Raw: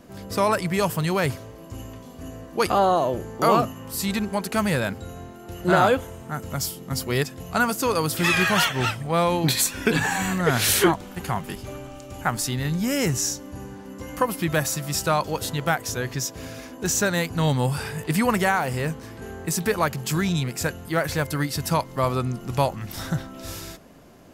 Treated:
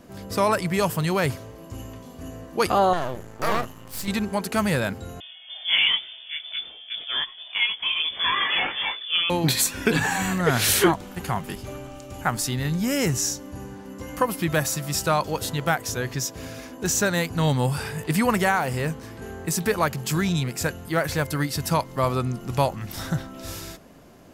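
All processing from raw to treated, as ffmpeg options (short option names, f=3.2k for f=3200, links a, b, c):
-filter_complex "[0:a]asettb=1/sr,asplit=3[a][b][c];[a]atrim=end=2.934[d];[b]atrim=start=2.93:end=4.08,asetpts=PTS-STARTPTS,afade=t=in:d=0.004:c=qsin,afade=t=out:st=1.146:d=0.004:c=qsin,equalizer=f=340:t=o:w=1.6:g=-5,aeval=exprs='max(val(0),0)':c=same[e];[c]atrim=start=4.076[f];[d][e]acrossfade=d=0.004:c1=hsin:c2=qsin[g];[g][f]acrossfade=d=0.004:c1=qsin:c2=hsin,asettb=1/sr,asplit=3[h][i][j];[h]atrim=end=5.204[k];[i]atrim=start=5.2:end=9.3,asetpts=PTS-STARTPTS,afade=t=in:d=0.004:c=qsin,afade=t=out:st=4.096:d=0.004:c=qsin,flanger=delay=18:depth=2.7:speed=1,lowpass=f=3.1k:t=q:w=0.5098,lowpass=f=3.1k:t=q:w=0.6013,lowpass=f=3.1k:t=q:w=0.9,lowpass=f=3.1k:t=q:w=2.563,afreqshift=-3600[l];[j]atrim=start=9.296[m];[k][l]acrossfade=d=0.004:c1=hsin:c2=qsin[n];[n][m]acrossfade=d=0.004:c1=qsin:c2=hsin"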